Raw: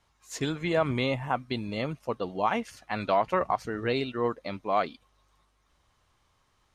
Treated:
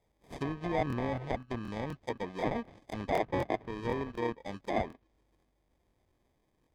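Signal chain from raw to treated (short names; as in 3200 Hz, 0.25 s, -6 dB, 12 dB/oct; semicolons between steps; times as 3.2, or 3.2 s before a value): sample-rate reducer 1400 Hz, jitter 0%; treble ducked by the level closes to 2100 Hz, closed at -26.5 dBFS; crackling interface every 0.25 s, samples 1024, repeat, from 0.88; gain -5 dB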